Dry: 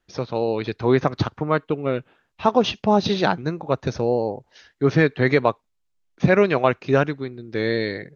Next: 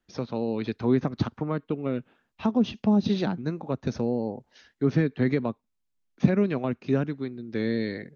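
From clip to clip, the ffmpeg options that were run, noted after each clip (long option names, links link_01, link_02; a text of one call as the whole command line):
ffmpeg -i in.wav -filter_complex "[0:a]acrossover=split=370[link_01][link_02];[link_02]acompressor=threshold=-26dB:ratio=6[link_03];[link_01][link_03]amix=inputs=2:normalize=0,equalizer=frequency=230:width_type=o:width=0.55:gain=8.5,volume=-5.5dB" out.wav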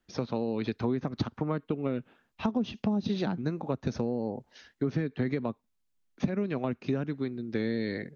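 ffmpeg -i in.wav -af "acompressor=threshold=-27dB:ratio=6,volume=1.5dB" out.wav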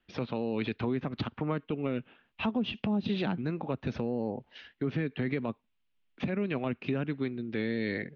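ffmpeg -i in.wav -af "alimiter=limit=-22dB:level=0:latency=1:release=15,lowpass=frequency=2900:width_type=q:width=2.6" out.wav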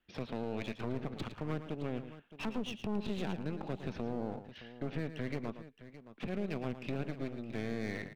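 ffmpeg -i in.wav -af "aeval=exprs='clip(val(0),-1,0.00944)':channel_layout=same,aecho=1:1:111|617:0.282|0.188,volume=-4.5dB" out.wav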